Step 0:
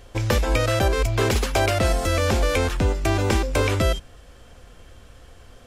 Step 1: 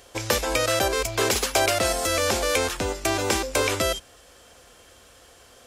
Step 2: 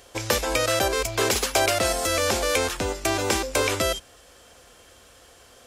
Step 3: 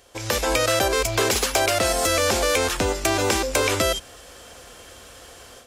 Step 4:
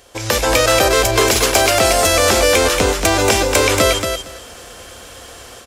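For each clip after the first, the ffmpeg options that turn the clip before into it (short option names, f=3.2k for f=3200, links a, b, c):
-af "highpass=42,bass=f=250:g=-12,treble=f=4k:g=7"
-af anull
-af "acompressor=threshold=-25dB:ratio=3,asoftclip=type=tanh:threshold=-16dB,dynaudnorm=f=180:g=3:m=11.5dB,volume=-4dB"
-af "aecho=1:1:230|460|690:0.501|0.0802|0.0128,volume=6.5dB"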